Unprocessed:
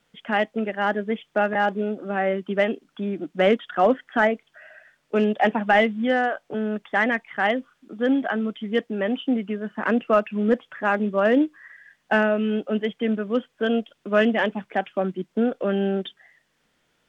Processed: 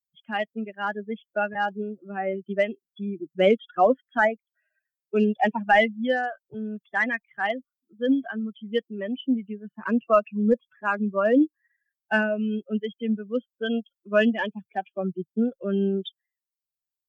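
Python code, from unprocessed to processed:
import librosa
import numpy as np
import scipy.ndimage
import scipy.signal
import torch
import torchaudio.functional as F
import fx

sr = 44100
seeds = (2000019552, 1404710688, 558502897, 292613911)

y = fx.bin_expand(x, sr, power=2.0)
y = y * 10.0 ** (2.5 / 20.0)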